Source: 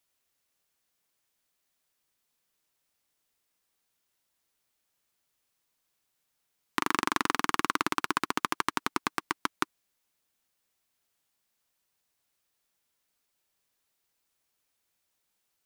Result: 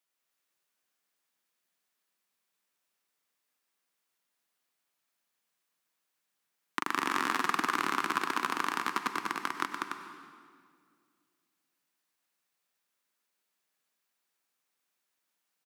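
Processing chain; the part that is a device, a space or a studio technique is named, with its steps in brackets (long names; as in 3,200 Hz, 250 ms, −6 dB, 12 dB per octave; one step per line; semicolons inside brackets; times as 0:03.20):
stadium PA (high-pass filter 150 Hz 24 dB per octave; parametric band 1,500 Hz +4 dB 1.7 octaves; loudspeakers that aren't time-aligned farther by 67 metres −3 dB, 100 metres −6 dB; convolution reverb RT60 2.1 s, pre-delay 91 ms, DRR 7.5 dB)
level −7 dB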